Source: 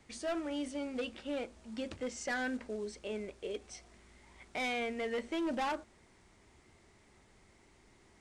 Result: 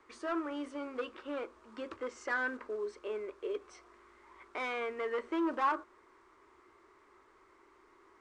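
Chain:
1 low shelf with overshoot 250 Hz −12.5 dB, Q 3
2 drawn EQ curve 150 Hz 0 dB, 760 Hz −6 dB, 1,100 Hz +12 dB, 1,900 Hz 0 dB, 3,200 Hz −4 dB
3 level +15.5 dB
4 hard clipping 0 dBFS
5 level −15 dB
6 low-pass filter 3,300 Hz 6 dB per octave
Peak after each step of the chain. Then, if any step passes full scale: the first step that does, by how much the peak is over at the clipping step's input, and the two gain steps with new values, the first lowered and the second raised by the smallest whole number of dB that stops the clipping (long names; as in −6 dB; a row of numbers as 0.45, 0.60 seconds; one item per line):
−23.5, −20.5, −5.0, −5.0, −20.0, −20.5 dBFS
no step passes full scale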